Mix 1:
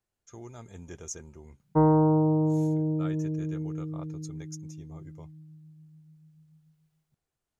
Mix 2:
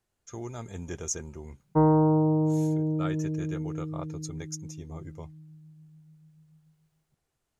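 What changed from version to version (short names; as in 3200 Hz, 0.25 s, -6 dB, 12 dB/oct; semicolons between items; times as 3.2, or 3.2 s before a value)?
speech +6.5 dB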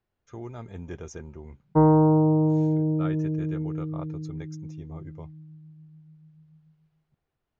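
background +3.5 dB; master: add air absorption 230 m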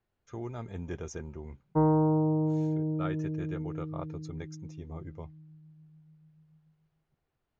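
background -6.5 dB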